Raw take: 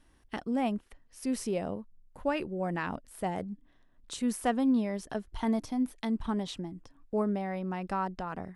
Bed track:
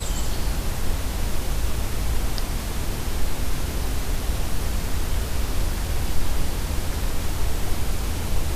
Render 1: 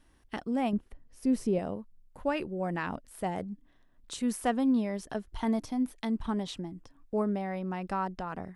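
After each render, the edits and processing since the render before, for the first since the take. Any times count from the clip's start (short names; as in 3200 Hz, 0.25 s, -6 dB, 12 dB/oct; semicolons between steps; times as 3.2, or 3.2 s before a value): 0.73–1.59 tilt shelf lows +6.5 dB, about 690 Hz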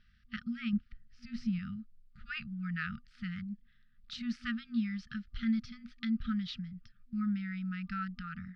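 FFT band-reject 240–1200 Hz; Chebyshev low-pass 4900 Hz, order 4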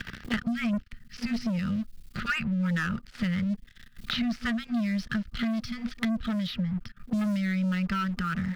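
sample leveller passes 3; three-band squash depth 100%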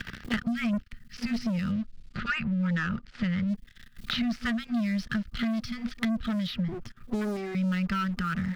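1.72–3.48 air absorption 92 m; 6.68–7.55 minimum comb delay 8.2 ms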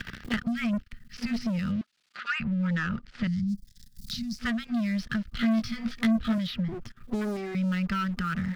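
1.81–2.4 HPF 880 Hz; 3.27–4.39 EQ curve 200 Hz 0 dB, 490 Hz -30 dB, 3000 Hz -14 dB, 4900 Hz +6 dB; 5.38–6.38 doubler 18 ms -2.5 dB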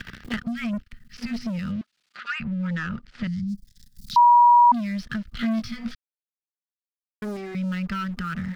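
4.16–4.72 bleep 961 Hz -10.5 dBFS; 5.95–7.22 mute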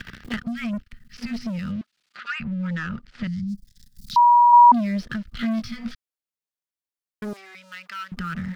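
4.53–5.12 bell 450 Hz +12 dB 1.5 oct; 7.33–8.12 Bessel high-pass 1300 Hz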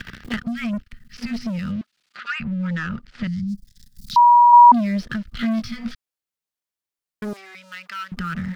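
gain +2.5 dB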